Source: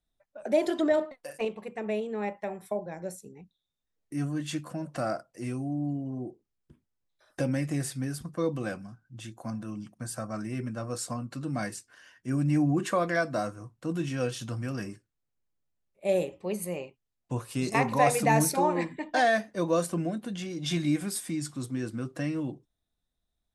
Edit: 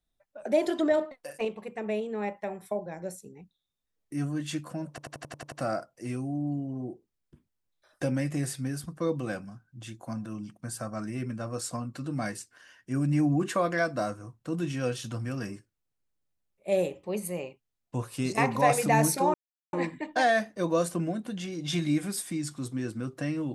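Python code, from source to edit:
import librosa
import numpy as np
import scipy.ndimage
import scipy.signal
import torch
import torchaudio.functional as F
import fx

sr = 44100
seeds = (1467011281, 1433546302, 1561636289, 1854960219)

y = fx.edit(x, sr, fx.stutter(start_s=4.89, slice_s=0.09, count=8),
    fx.insert_silence(at_s=18.71, length_s=0.39), tone=tone)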